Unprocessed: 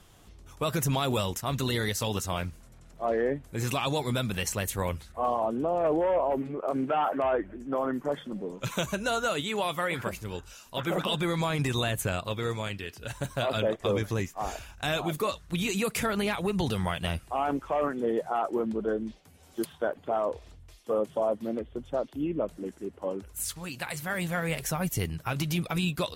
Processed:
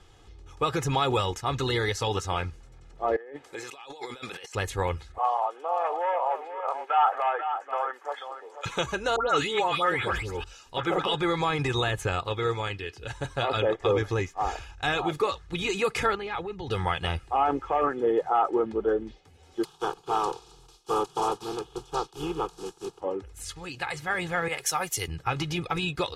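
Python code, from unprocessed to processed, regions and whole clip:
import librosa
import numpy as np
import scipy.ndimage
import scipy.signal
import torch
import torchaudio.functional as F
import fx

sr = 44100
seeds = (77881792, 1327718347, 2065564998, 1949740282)

y = fx.chain(x, sr, fx.highpass(hz=480.0, slope=12),
    fx.over_compress(threshold_db=-43.0, ratio=-1.0), at=(3.16, 4.55))
y = fx.chain(y, sr, fx.highpass(hz=640.0, slope=24),
    fx.high_shelf(hz=6800.0, db=5.0),
    fx.echo_single(ms=489, db=-8.5), at=(5.18, 8.66))
y = fx.chain(y, sr, fx.dispersion(late='highs', ms=143.0, hz=2100.0),
    fx.sustainer(db_per_s=37.0), at=(9.16, 10.44))
y = fx.chain(y, sr, fx.air_absorb(metres=80.0),
    fx.level_steps(step_db=12), at=(16.15, 16.71))
y = fx.spec_flatten(y, sr, power=0.5, at=(19.63, 23.0), fade=0.02)
y = fx.fixed_phaser(y, sr, hz=390.0, stages=8, at=(19.63, 23.0), fade=0.02)
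y = fx.chain(y, sr, fx.riaa(side='recording'),
    fx.band_widen(depth_pct=100), at=(24.48, 25.08))
y = scipy.signal.sosfilt(scipy.signal.butter(2, 6000.0, 'lowpass', fs=sr, output='sos'), y)
y = fx.dynamic_eq(y, sr, hz=1100.0, q=0.85, threshold_db=-41.0, ratio=4.0, max_db=5)
y = y + 0.6 * np.pad(y, (int(2.4 * sr / 1000.0), 0))[:len(y)]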